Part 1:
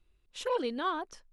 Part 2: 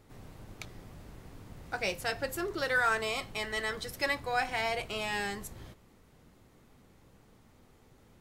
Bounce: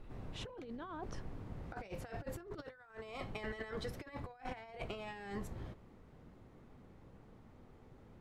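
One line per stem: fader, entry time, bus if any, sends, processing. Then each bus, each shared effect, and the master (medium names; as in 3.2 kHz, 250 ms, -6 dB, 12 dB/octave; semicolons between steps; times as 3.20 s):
-9.0 dB, 0.00 s, no send, level flattener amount 50%
-3.0 dB, 0.00 s, no send, none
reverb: none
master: low-pass 1.2 kHz 6 dB/octave; compressor with a negative ratio -44 dBFS, ratio -0.5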